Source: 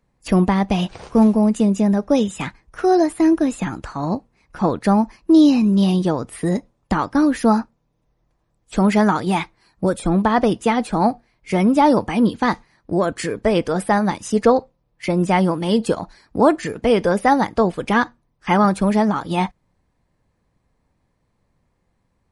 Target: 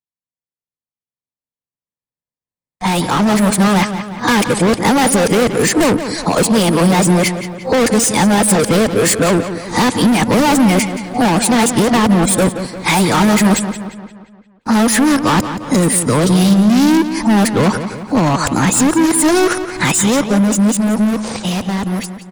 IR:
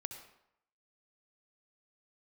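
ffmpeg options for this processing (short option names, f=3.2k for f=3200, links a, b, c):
-filter_complex "[0:a]areverse,equalizer=f=125:t=o:w=1:g=10,equalizer=f=250:t=o:w=1:g=8,equalizer=f=500:t=o:w=1:g=10,equalizer=f=1k:t=o:w=1:g=9,equalizer=f=2k:t=o:w=1:g=8,equalizer=f=4k:t=o:w=1:g=7,equalizer=f=8k:t=o:w=1:g=12,agate=range=-48dB:threshold=-46dB:ratio=16:detection=peak,aemphasis=mode=production:type=75fm,acrossover=split=170[a][b];[b]asoftclip=type=hard:threshold=-14dB[c];[a][c]amix=inputs=2:normalize=0,acompressor=threshold=-29dB:ratio=2.5,asplit=2[d][e];[e]adelay=175,lowpass=f=4.7k:p=1,volume=-10dB,asplit=2[f][g];[g]adelay=175,lowpass=f=4.7k:p=1,volume=0.52,asplit=2[h][i];[i]adelay=175,lowpass=f=4.7k:p=1,volume=0.52,asplit=2[j][k];[k]adelay=175,lowpass=f=4.7k:p=1,volume=0.52,asplit=2[l][m];[m]adelay=175,lowpass=f=4.7k:p=1,volume=0.52,asplit=2[n][o];[o]adelay=175,lowpass=f=4.7k:p=1,volume=0.52[p];[f][h][j][l][n][p]amix=inputs=6:normalize=0[q];[d][q]amix=inputs=2:normalize=0,dynaudnorm=f=300:g=17:m=13dB"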